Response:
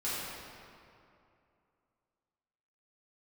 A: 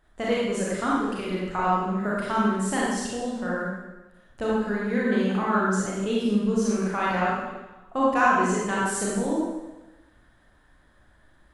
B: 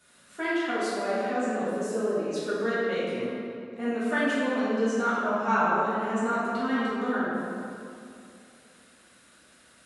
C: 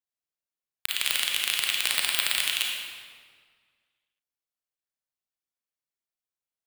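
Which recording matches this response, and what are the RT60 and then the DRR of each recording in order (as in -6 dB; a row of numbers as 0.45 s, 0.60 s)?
B; 1.1 s, 2.6 s, 1.8 s; -6.0 dB, -11.5 dB, -1.0 dB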